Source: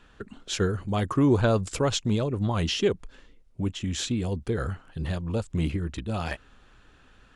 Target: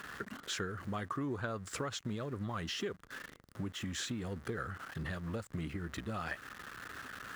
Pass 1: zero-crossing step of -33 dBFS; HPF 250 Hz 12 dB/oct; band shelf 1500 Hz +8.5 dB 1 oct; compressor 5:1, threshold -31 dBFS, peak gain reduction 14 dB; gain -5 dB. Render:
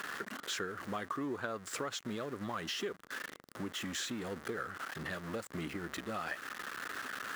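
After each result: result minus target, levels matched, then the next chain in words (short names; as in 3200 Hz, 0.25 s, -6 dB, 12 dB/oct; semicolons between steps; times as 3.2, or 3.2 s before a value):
125 Hz band -8.0 dB; zero-crossing step: distortion +6 dB
zero-crossing step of -33 dBFS; HPF 99 Hz 12 dB/oct; band shelf 1500 Hz +8.5 dB 1 oct; compressor 5:1, threshold -31 dBFS, peak gain reduction 14 dB; gain -5 dB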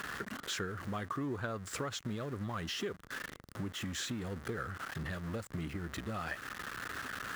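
zero-crossing step: distortion +6 dB
zero-crossing step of -40 dBFS; HPF 99 Hz 12 dB/oct; band shelf 1500 Hz +8.5 dB 1 oct; compressor 5:1, threshold -31 dBFS, peak gain reduction 14 dB; gain -5 dB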